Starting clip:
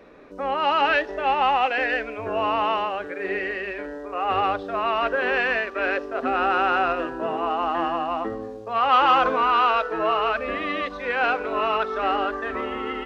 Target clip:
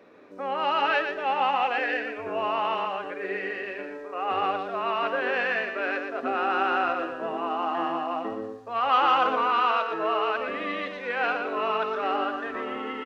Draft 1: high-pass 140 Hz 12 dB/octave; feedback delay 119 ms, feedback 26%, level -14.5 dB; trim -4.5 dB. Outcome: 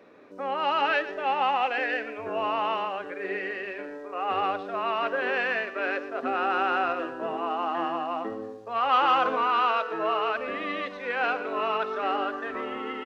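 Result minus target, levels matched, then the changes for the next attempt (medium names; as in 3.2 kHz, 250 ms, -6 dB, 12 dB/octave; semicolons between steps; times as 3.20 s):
echo-to-direct -8 dB
change: feedback delay 119 ms, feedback 26%, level -6.5 dB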